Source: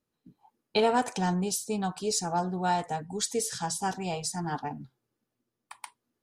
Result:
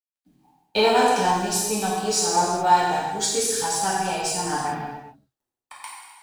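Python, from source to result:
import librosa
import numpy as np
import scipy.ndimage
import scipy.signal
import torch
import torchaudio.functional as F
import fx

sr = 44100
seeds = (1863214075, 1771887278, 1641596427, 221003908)

y = fx.law_mismatch(x, sr, coded='A')
y = fx.peak_eq(y, sr, hz=190.0, db=-8.5, octaves=0.76)
y = fx.rev_gated(y, sr, seeds[0], gate_ms=450, shape='falling', drr_db=-7.0)
y = F.gain(torch.from_numpy(y), 2.5).numpy()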